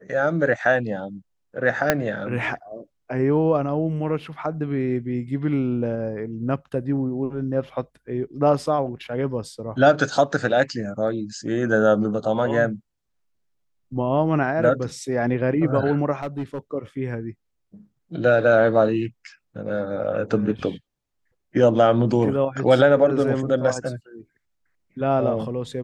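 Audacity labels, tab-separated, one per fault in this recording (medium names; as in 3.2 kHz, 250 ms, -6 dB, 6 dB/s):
1.900000	1.900000	pop -2 dBFS
16.220000	16.580000	clipped -23 dBFS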